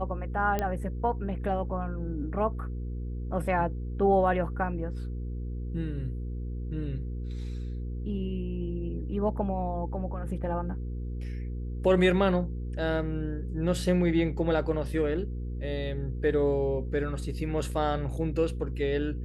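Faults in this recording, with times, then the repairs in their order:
hum 60 Hz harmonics 8 -34 dBFS
0.59 pop -15 dBFS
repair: de-click; de-hum 60 Hz, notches 8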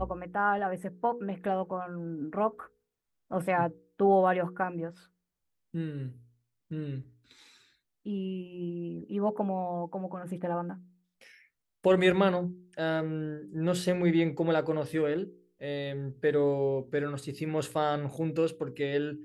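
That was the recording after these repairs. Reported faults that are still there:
none

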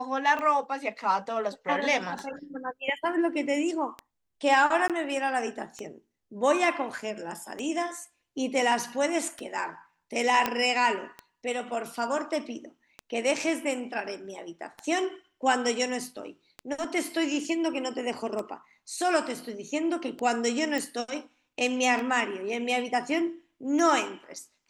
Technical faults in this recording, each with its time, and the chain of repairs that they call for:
tick 33 1/3 rpm -21 dBFS
4.88–4.9 gap 17 ms
10.46 pop -10 dBFS
20.78 pop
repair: de-click; interpolate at 4.88, 17 ms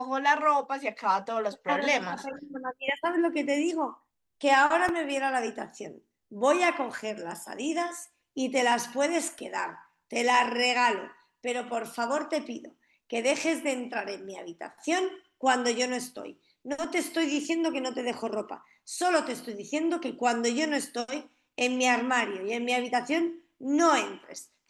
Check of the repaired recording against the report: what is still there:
20.78 pop

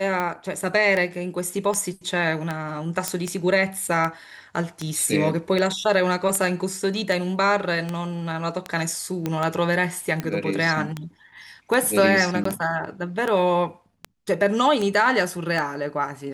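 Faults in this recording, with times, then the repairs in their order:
tick 78 rpm -13 dBFS
3.08 pop -7 dBFS
9.26 pop -12 dBFS
12.44–12.45 gap 14 ms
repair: de-click; interpolate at 12.44, 14 ms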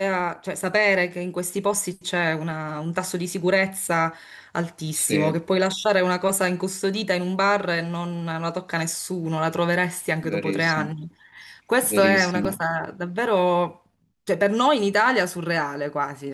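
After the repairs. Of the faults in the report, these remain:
9.26 pop

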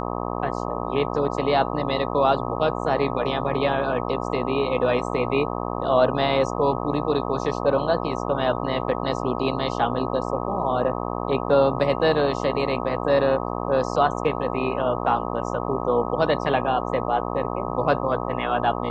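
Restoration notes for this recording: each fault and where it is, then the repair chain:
buzz 60 Hz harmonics 21 -28 dBFS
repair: de-hum 60 Hz, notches 21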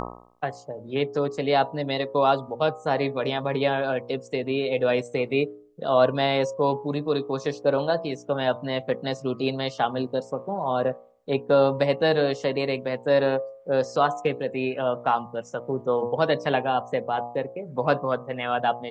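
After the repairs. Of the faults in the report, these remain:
none

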